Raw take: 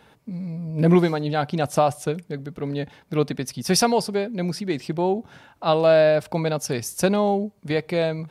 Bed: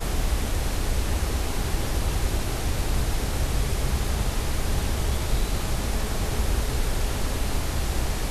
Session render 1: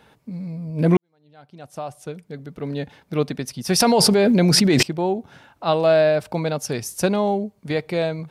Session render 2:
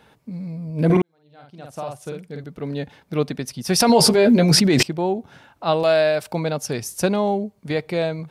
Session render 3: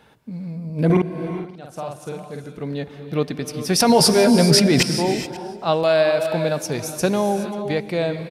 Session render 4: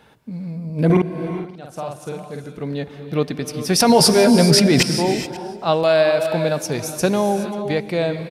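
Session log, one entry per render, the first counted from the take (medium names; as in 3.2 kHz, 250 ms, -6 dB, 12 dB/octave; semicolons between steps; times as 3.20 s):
0.97–2.70 s: fade in quadratic; 3.80–4.83 s: level flattener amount 100%
0.85–2.44 s: doubling 49 ms -3 dB; 3.88–4.57 s: doubling 13 ms -4.5 dB; 5.83–6.33 s: tilt EQ +2 dB/octave
delay 538 ms -23 dB; gated-style reverb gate 450 ms rising, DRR 8 dB
trim +1.5 dB; peak limiter -2 dBFS, peak gain reduction 1.5 dB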